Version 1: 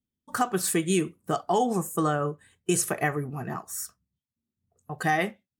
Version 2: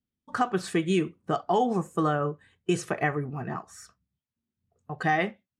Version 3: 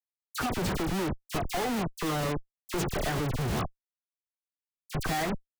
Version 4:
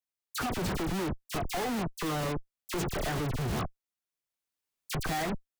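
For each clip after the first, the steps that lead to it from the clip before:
low-pass filter 4,000 Hz 12 dB per octave
speech leveller within 3 dB 2 s; comparator with hysteresis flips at −33 dBFS; all-pass dispersion lows, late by 53 ms, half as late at 2,100 Hz
camcorder AGC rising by 7.4 dB per second; soft clipping −25 dBFS, distortion −17 dB

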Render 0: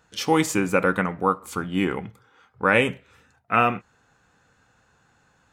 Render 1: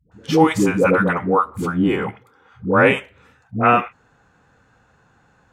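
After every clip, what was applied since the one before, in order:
high-shelf EQ 2,600 Hz −10 dB
all-pass dispersion highs, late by 118 ms, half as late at 410 Hz
level +6.5 dB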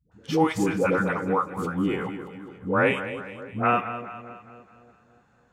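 echo with a time of its own for lows and highs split 590 Hz, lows 287 ms, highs 207 ms, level −11.5 dB
level −7.5 dB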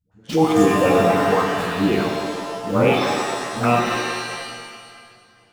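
flanger swept by the level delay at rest 10.8 ms, full sweep at −20.5 dBFS
in parallel at −4 dB: centre clipping without the shift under −32 dBFS
on the sum: reverb with rising layers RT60 1.5 s, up +7 semitones, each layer −2 dB, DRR 2.5 dB
level +1.5 dB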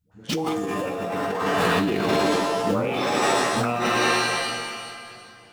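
compressor whose output falls as the input rises −24 dBFS, ratio −1
low-shelf EQ 110 Hz −4.5 dB
level that may fall only so fast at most 23 dB per second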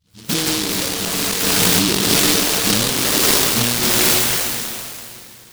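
short delay modulated by noise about 4,000 Hz, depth 0.45 ms
level +6 dB

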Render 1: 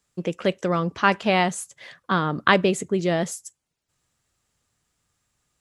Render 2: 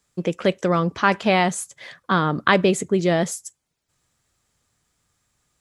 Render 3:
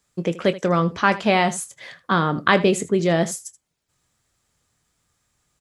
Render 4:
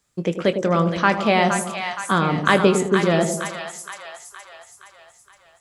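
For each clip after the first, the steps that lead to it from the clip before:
notch filter 2,800 Hz, Q 22; in parallel at −1.5 dB: brickwall limiter −11.5 dBFS, peak gain reduction 10 dB; on the sum: level −2 dB
ambience of single reflections 24 ms −13 dB, 79 ms −17 dB
hard clipping −2.5 dBFS, distortion −42 dB; echo with a time of its own for lows and highs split 760 Hz, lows 105 ms, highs 468 ms, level −6.5 dB

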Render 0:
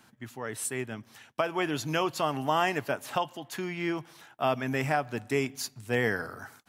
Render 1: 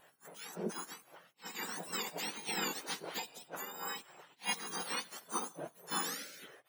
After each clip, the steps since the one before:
frequency axis turned over on the octave scale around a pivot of 1,600 Hz
gate on every frequency bin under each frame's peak −10 dB weak
level that may rise only so fast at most 320 dB per second
level +1 dB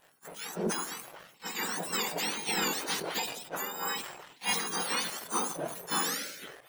leveller curve on the samples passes 2
level that may fall only so fast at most 64 dB per second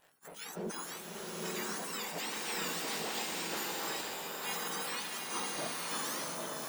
brickwall limiter −28.5 dBFS, peak gain reduction 10 dB
slow-attack reverb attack 950 ms, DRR −2 dB
level −4 dB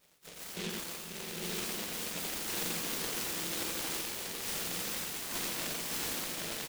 on a send: single-tap delay 87 ms −3.5 dB
on the sum: short delay modulated by noise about 2,900 Hz, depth 0.35 ms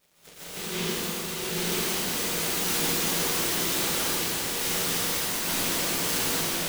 dense smooth reverb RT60 1.6 s, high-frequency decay 0.85×, pre-delay 120 ms, DRR −9.5 dB

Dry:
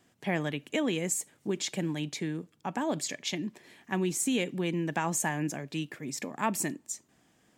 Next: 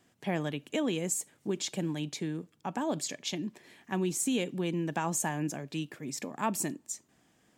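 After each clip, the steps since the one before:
dynamic equaliser 2,000 Hz, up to −6 dB, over −51 dBFS, Q 2.5
level −1 dB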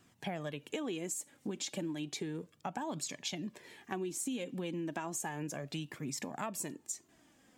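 flanger 0.33 Hz, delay 0.7 ms, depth 3.3 ms, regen +38%
downward compressor 6 to 1, threshold −41 dBFS, peak gain reduction 12.5 dB
level +5.5 dB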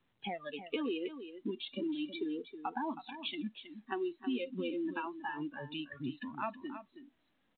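noise reduction from a noise print of the clip's start 23 dB
single-tap delay 320 ms −11 dB
level +3 dB
mu-law 64 kbit/s 8,000 Hz

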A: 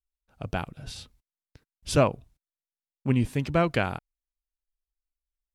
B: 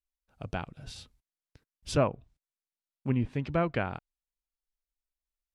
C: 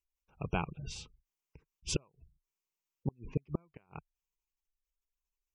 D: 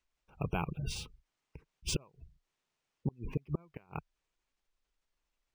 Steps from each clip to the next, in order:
treble cut that deepens with the level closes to 2,300 Hz, closed at −21 dBFS; level −4.5 dB
EQ curve with evenly spaced ripples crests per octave 0.75, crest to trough 8 dB; gate with flip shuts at −20 dBFS, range −40 dB; gate on every frequency bin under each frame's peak −25 dB strong; level +1.5 dB
brickwall limiter −28.5 dBFS, peak gain reduction 10 dB; linearly interpolated sample-rate reduction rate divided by 3×; level +6 dB

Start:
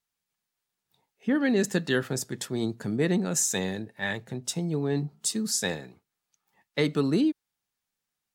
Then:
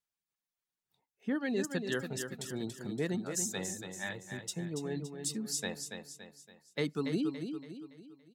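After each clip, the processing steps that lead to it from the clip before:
reverb reduction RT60 1.6 s
on a send: repeating echo 283 ms, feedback 44%, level −7 dB
on the sum: level −8 dB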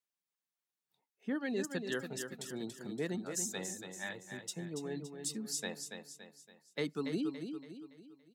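high-pass filter 160 Hz 12 dB per octave
level −2.5 dB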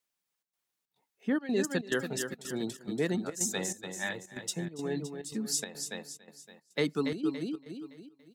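gate pattern "xxxx.xxx." 141 BPM −12 dB
level +7 dB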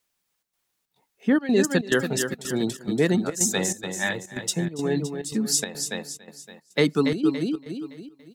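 low-shelf EQ 97 Hz +6.5 dB
level +8.5 dB

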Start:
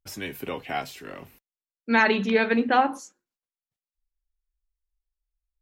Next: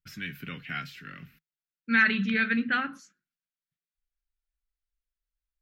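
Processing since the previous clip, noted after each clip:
drawn EQ curve 100 Hz 0 dB, 160 Hz +12 dB, 360 Hz −9 dB, 910 Hz −18 dB, 1,400 Hz +8 dB, 4,700 Hz +1 dB, 8,900 Hz −11 dB, 15,000 Hz −3 dB
level −6 dB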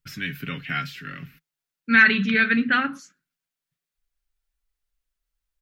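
comb filter 7.2 ms, depth 31%
level +6.5 dB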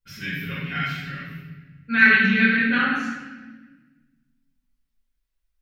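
convolution reverb RT60 1.2 s, pre-delay 4 ms, DRR −11.5 dB
level −13 dB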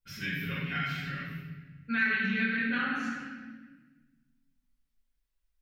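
downward compressor 2.5 to 1, threshold −27 dBFS, peak gain reduction 11.5 dB
level −3 dB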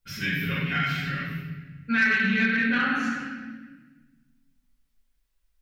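soft clipping −18.5 dBFS, distortion −25 dB
level +7 dB

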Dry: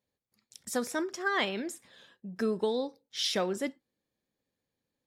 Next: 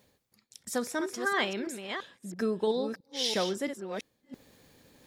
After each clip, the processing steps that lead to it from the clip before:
delay that plays each chunk backwards 334 ms, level −7 dB
reversed playback
upward compression, threshold −38 dBFS
reversed playback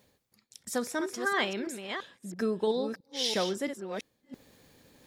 no processing that can be heard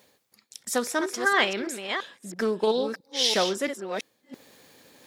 high-pass filter 410 Hz 6 dB per octave
highs frequency-modulated by the lows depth 0.14 ms
level +7.5 dB

